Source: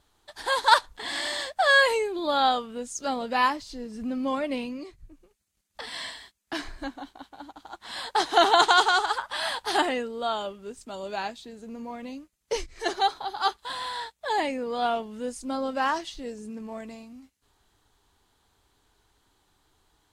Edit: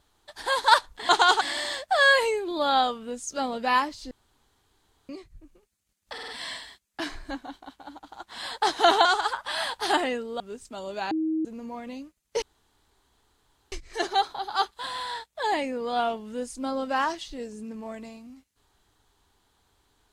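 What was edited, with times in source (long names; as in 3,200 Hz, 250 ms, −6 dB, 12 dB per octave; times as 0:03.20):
0:03.79–0:04.77: fill with room tone
0:05.81: stutter 0.05 s, 4 plays
0:08.58–0:08.90: move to 0:01.09
0:10.25–0:10.56: remove
0:11.27–0:11.61: beep over 317 Hz −23.5 dBFS
0:12.58: splice in room tone 1.30 s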